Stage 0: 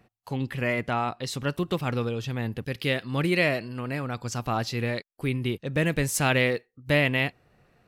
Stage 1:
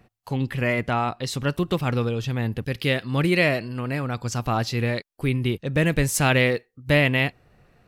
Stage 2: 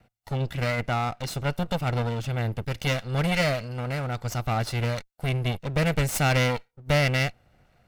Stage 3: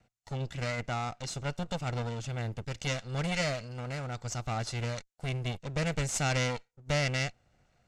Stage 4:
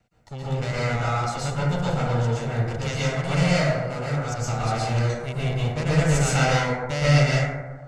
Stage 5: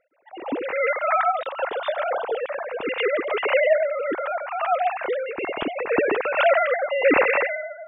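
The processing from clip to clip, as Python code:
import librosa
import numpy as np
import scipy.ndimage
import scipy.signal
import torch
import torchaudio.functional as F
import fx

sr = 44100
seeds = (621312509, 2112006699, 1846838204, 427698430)

y1 = fx.low_shelf(x, sr, hz=80.0, db=7.5)
y1 = F.gain(torch.from_numpy(y1), 3.0).numpy()
y2 = fx.lower_of_two(y1, sr, delay_ms=1.4)
y2 = F.gain(torch.from_numpy(y2), -2.5).numpy()
y3 = fx.lowpass_res(y2, sr, hz=7100.0, q=2.8)
y3 = F.gain(torch.from_numpy(y3), -7.5).numpy()
y4 = fx.rev_plate(y3, sr, seeds[0], rt60_s=1.3, hf_ratio=0.3, predelay_ms=105, drr_db=-9.0)
y5 = fx.sine_speech(y4, sr)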